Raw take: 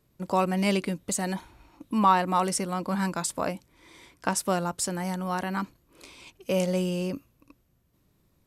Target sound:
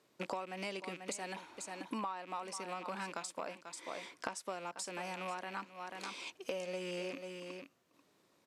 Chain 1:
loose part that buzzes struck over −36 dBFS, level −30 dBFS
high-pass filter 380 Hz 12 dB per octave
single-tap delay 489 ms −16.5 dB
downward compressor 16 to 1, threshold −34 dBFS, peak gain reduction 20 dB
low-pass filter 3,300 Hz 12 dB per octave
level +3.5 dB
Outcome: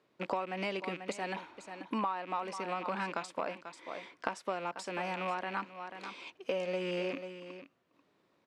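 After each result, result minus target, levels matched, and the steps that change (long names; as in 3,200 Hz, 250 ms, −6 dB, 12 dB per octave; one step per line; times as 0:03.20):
8,000 Hz band −12.0 dB; downward compressor: peak gain reduction −6 dB
change: low-pass filter 7,700 Hz 12 dB per octave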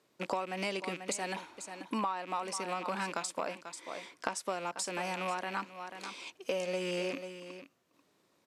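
downward compressor: peak gain reduction −6 dB
change: downward compressor 16 to 1, threshold −40.5 dBFS, peak gain reduction 26 dB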